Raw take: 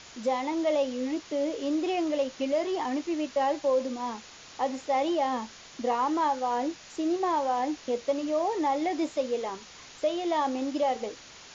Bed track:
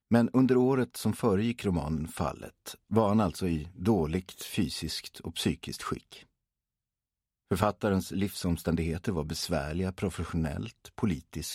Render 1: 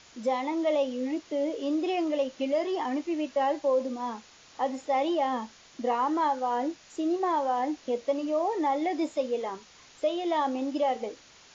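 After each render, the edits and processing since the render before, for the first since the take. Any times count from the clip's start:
noise reduction from a noise print 6 dB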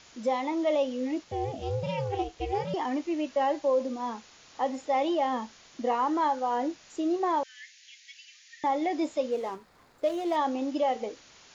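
0:01.24–0:02.74: ring modulation 200 Hz
0:07.43–0:08.64: Butterworth high-pass 1,700 Hz 72 dB per octave
0:09.31–0:10.36: running median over 15 samples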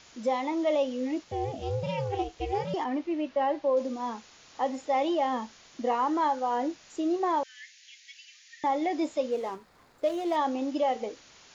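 0:02.84–0:03.77: high-frequency loss of the air 170 metres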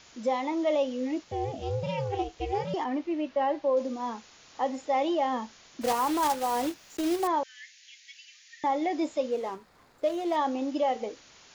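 0:05.81–0:07.29: one scale factor per block 3 bits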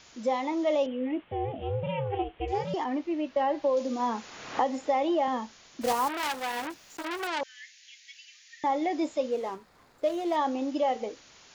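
0:00.86–0:02.48: Butterworth low-pass 3,300 Hz 72 dB per octave
0:03.36–0:05.28: multiband upward and downward compressor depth 100%
0:06.08–0:07.41: saturating transformer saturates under 2,700 Hz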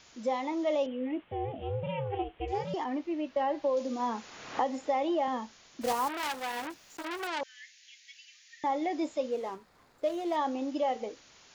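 level −3 dB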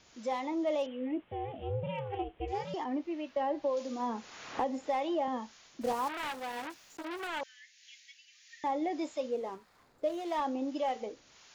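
two-band tremolo in antiphase 1.7 Hz, depth 50%, crossover 720 Hz
slew-rate limiting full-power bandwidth 43 Hz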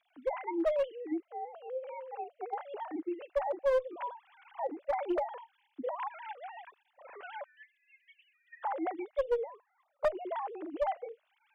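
three sine waves on the formant tracks
asymmetric clip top −26 dBFS

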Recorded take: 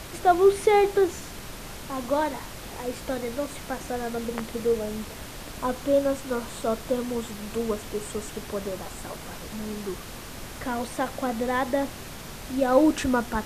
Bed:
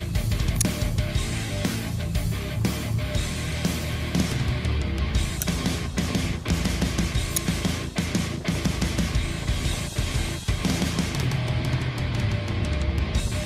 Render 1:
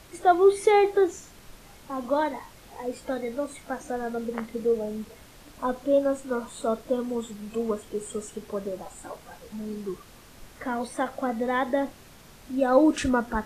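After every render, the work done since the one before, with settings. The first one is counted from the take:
noise reduction from a noise print 11 dB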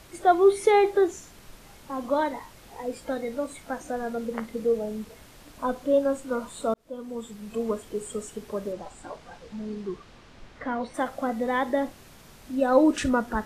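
0:06.74–0:07.82: fade in equal-power
0:08.72–0:10.93: low-pass filter 7,000 Hz → 3,800 Hz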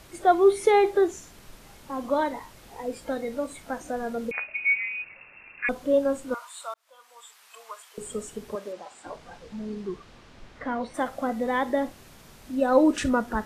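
0:04.31–0:05.69: voice inversion scrambler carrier 2,700 Hz
0:06.34–0:07.98: high-pass filter 910 Hz 24 dB per octave
0:08.55–0:09.06: meter weighting curve A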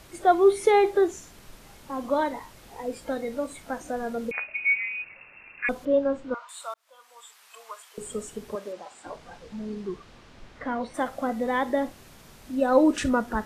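0:05.85–0:06.49: high-frequency loss of the air 180 metres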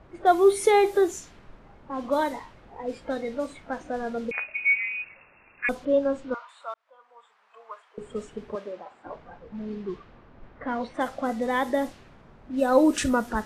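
low-pass that shuts in the quiet parts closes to 1,100 Hz, open at −21.5 dBFS
high-shelf EQ 5,100 Hz +7.5 dB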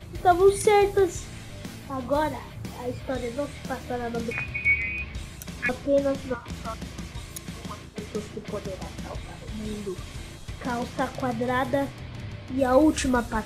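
mix in bed −12.5 dB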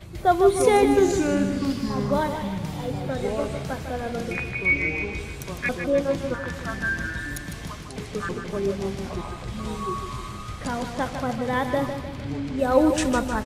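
delay with pitch and tempo change per echo 244 ms, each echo −6 semitones, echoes 3, each echo −6 dB
on a send: repeating echo 153 ms, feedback 48%, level −8 dB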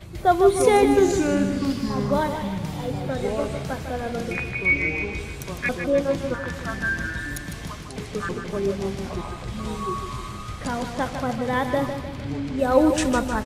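level +1 dB

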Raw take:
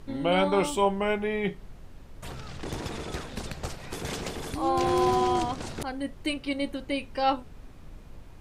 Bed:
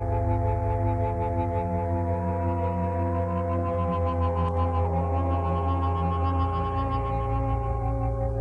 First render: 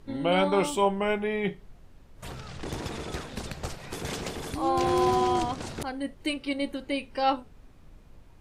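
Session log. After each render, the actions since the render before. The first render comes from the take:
noise reduction from a noise print 6 dB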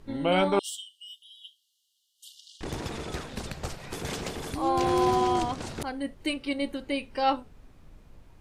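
0:00.59–0:02.61: linear-phase brick-wall high-pass 2,800 Hz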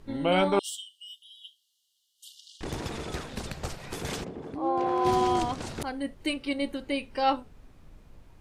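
0:04.23–0:05.04: resonant band-pass 210 Hz → 890 Hz, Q 0.75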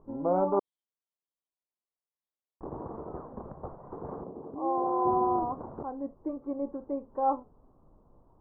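elliptic low-pass filter 1,100 Hz, stop band 60 dB
low-shelf EQ 200 Hz −10 dB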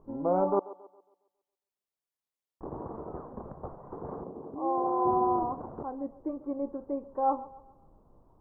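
delay with a band-pass on its return 137 ms, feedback 40%, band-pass 680 Hz, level −17 dB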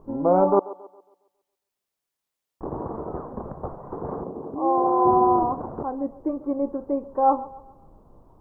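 level +8 dB

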